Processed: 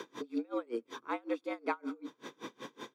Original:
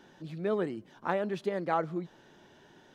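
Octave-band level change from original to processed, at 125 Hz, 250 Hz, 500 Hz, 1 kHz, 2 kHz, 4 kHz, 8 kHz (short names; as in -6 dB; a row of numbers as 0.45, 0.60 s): under -20 dB, -1.5 dB, -7.0 dB, -6.0 dB, -3.5 dB, 0.0 dB, n/a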